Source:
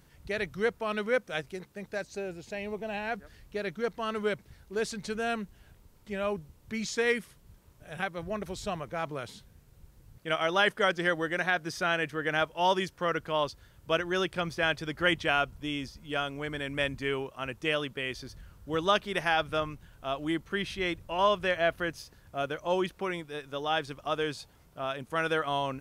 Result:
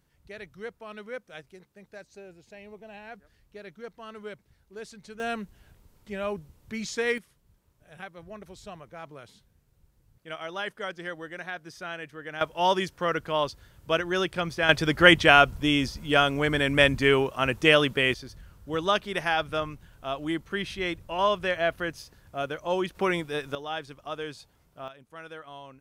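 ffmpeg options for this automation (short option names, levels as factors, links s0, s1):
-af "asetnsamples=n=441:p=0,asendcmd='5.2 volume volume 0dB;7.18 volume volume -8.5dB;12.41 volume volume 2.5dB;14.69 volume volume 10.5dB;18.14 volume volume 1dB;22.95 volume volume 7.5dB;23.55 volume volume -4.5dB;24.88 volume volume -14dB',volume=0.316"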